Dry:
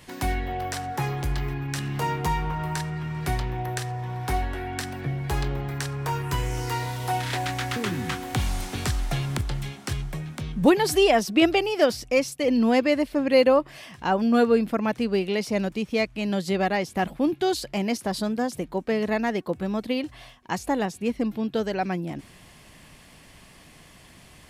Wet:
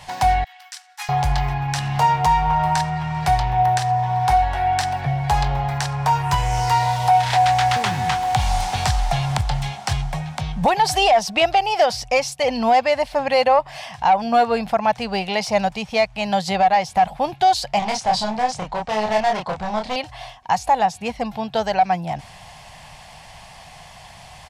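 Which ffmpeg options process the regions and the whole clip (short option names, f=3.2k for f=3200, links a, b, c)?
-filter_complex "[0:a]asettb=1/sr,asplit=3[a][b][c];[a]atrim=end=0.444[d];[b]atrim=start=0.44:end=1.09,asetpts=PTS-STARTPTS,afade=t=in:d=0.004:c=qsin,afade=t=out:st=0.646:d=0.004:c=qsin,agate=range=-33dB:threshold=-20dB:ratio=3:release=100:detection=peak,highpass=f=1.3k:w=0.5412,highpass=f=1.3k:w=1.3066,equalizer=f=10k:t=o:w=2.8:g=10.5[e];[c]atrim=start=1.086[f];[d][e]acrossfade=d=0.004:c1=hsin:c2=qsin[g];[g][f]acrossfade=d=0.004:c1=qsin:c2=hsin,asettb=1/sr,asplit=3[h][i][j];[h]atrim=end=17.794[k];[i]atrim=start=17.79:end=19.96,asetpts=PTS-STARTPTS,afade=t=in:d=0.004:c=qsin,afade=t=out:st=2.166:d=0.004:c=qsin,lowpass=f=8.2k:w=0.5412,lowpass=f=8.2k:w=1.3066,volume=27dB,asoftclip=hard,volume=-27dB,asplit=2[l][m];[m]adelay=28,volume=-2.5dB[n];[l][n]amix=inputs=2:normalize=0,atrim=end_sample=95697[o];[j]atrim=start=19.956[p];[k][o]acrossfade=d=0.004:c1=hsin:c2=qsin[q];[q][p]acrossfade=d=0.004:c1=qsin:c2=hsin,firequalizer=gain_entry='entry(140,0);entry(300,-18);entry(760,13);entry(1200,0);entry(5000,3);entry(13000,-8)':delay=0.05:min_phase=1,acontrast=71,alimiter=limit=-8.5dB:level=0:latency=1:release=200"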